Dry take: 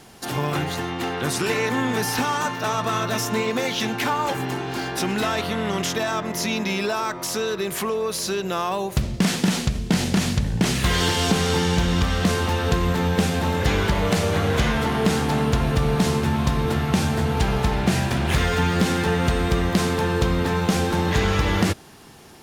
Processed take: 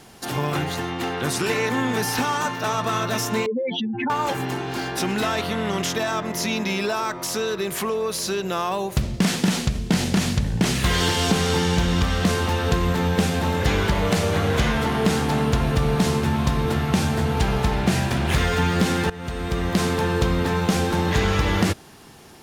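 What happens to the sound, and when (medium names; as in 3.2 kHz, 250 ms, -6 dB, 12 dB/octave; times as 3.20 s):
3.46–4.10 s: spectral contrast enhancement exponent 3.7
19.10–19.84 s: fade in, from -18 dB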